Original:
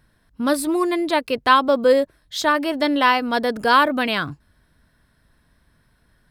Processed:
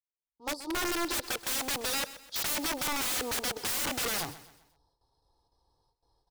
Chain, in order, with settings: opening faded in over 1.66 s; gate with hold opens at -51 dBFS; three-band isolator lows -14 dB, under 590 Hz, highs -13 dB, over 3100 Hz; comb 2.4 ms, depth 85%; sample leveller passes 1; in parallel at -3 dB: wavefolder -18 dBFS; on the sum: EQ curve 110 Hz 0 dB, 1000 Hz +2 dB, 1500 Hz -28 dB, 2300 Hz -30 dB, 4800 Hz +10 dB, 11000 Hz -5 dB; wrapped overs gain 20 dB; on a send: feedback echo 0.128 s, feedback 41%, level -15.5 dB; on the sum: gain -6.5 dB

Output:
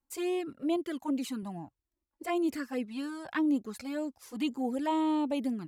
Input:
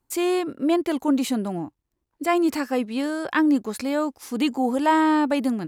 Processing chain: 0.76–1.43 low shelf 150 Hz -8 dB; envelope flanger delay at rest 3.7 ms, full sweep at -17.5 dBFS; gain -8 dB

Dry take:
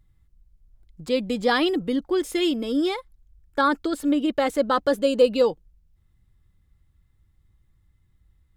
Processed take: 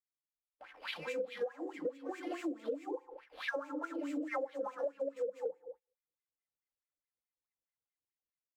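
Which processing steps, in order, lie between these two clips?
spectral delay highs early, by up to 0.47 s; AGC gain up to 10 dB; treble ducked by the level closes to 580 Hz, closed at -10 dBFS; sample-rate reducer 7500 Hz, jitter 20%; notches 60/120/180/240/300/360/420/480 Hz; comb 3.8 ms, depth 34%; band-limited delay 70 ms, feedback 49%, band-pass 870 Hz, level -16 dB; FDN reverb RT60 0.62 s, low-frequency decay 0.75×, high-frequency decay 0.65×, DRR 5 dB; gate -39 dBFS, range -27 dB; wah 4.7 Hz 450–2400 Hz, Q 6; compressor 8:1, threshold -37 dBFS, peak gain reduction 23.5 dB; gain +2 dB

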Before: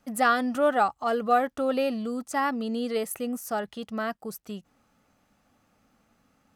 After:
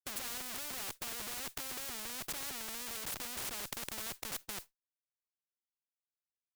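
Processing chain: Schmitt trigger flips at -38.5 dBFS; modulation noise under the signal 26 dB; spectral compressor 4:1; gain +1 dB

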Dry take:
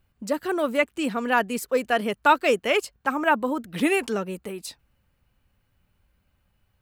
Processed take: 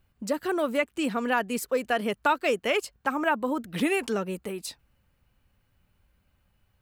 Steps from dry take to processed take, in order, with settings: compressor 2:1, threshold -24 dBFS, peak gain reduction 7 dB

